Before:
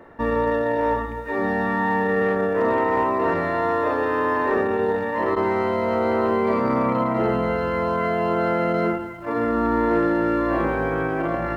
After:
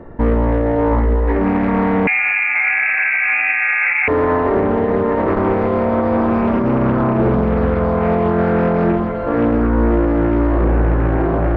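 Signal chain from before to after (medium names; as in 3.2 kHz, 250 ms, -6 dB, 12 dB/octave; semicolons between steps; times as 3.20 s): tilt EQ -4 dB/octave; saturation -8.5 dBFS, distortion -20 dB; two-band feedback delay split 490 Hz, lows 137 ms, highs 760 ms, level -6 dB; 2.07–4.08 s: frequency inversion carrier 2.6 kHz; loudness maximiser +10.5 dB; loudspeaker Doppler distortion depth 0.44 ms; trim -7 dB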